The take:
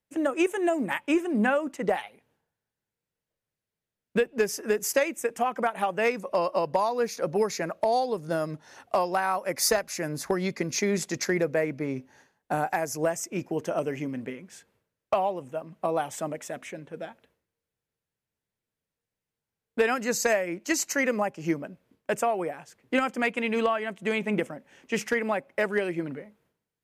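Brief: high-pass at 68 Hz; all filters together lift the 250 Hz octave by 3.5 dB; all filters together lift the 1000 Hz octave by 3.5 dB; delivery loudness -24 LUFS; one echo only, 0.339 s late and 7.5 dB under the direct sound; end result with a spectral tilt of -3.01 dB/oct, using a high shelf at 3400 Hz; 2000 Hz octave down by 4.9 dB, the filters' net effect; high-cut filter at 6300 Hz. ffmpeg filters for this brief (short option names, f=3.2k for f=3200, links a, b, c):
-af "highpass=68,lowpass=6.3k,equalizer=f=250:t=o:g=4.5,equalizer=f=1k:t=o:g=6.5,equalizer=f=2k:t=o:g=-7,highshelf=f=3.4k:g=-5,aecho=1:1:339:0.422,volume=2dB"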